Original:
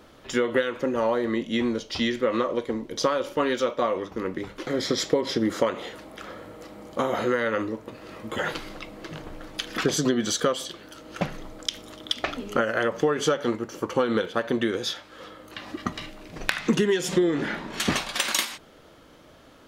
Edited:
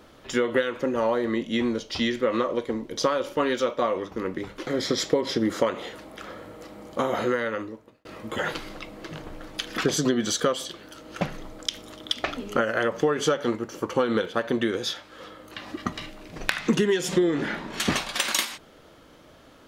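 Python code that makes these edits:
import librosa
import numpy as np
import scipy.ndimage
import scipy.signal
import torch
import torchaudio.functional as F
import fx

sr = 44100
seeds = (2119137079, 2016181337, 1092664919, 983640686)

y = fx.edit(x, sr, fx.fade_out_span(start_s=7.26, length_s=0.79), tone=tone)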